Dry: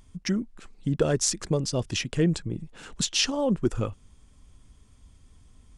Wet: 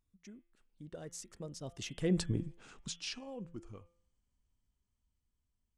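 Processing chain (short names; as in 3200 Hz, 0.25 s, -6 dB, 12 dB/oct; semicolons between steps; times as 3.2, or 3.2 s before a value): Doppler pass-by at 2.3, 24 m/s, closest 2.7 m; de-hum 171.1 Hz, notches 20; gain -1 dB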